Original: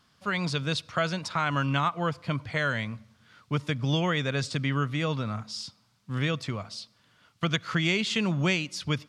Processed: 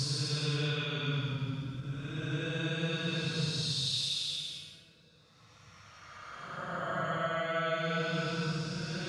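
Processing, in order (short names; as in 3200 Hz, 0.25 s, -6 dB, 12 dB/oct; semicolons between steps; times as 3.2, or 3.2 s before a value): level quantiser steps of 11 dB; Paulstretch 15×, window 0.10 s, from 0.51; ending taper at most 250 dB/s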